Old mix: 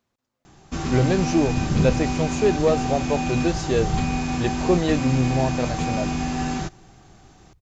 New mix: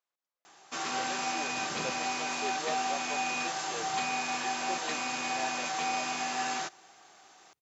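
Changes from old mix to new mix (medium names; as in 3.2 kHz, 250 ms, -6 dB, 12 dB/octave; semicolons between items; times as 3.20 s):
speech -12.0 dB; master: add high-pass 710 Hz 12 dB/octave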